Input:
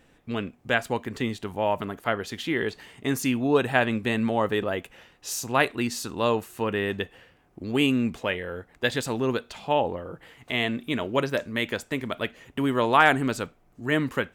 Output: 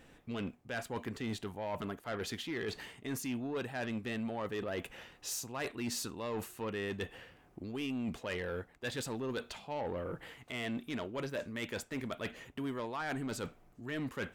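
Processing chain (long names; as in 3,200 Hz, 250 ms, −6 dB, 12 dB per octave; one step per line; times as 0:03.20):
reversed playback
downward compressor 8 to 1, threshold −32 dBFS, peak gain reduction 19 dB
reversed playback
soft clipping −31 dBFS, distortion −13 dB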